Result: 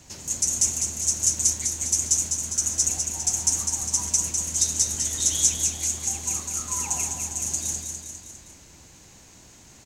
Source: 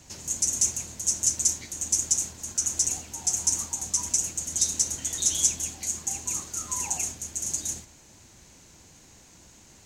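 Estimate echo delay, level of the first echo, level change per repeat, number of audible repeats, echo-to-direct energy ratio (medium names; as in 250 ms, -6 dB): 202 ms, -5.5 dB, -5.0 dB, 4, -4.0 dB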